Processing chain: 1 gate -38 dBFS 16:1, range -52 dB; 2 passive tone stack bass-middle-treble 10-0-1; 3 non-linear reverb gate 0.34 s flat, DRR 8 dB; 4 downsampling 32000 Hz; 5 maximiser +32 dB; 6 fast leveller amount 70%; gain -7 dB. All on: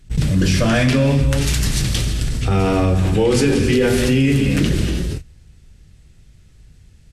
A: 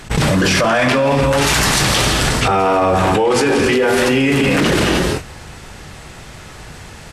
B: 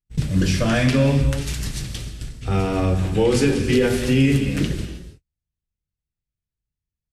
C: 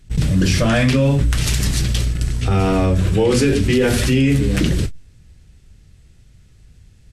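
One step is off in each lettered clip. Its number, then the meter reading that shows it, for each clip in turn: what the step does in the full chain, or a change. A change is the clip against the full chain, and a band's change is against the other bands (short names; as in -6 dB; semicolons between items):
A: 2, 125 Hz band -9.5 dB; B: 6, crest factor change -2.0 dB; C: 3, momentary loudness spread change -1 LU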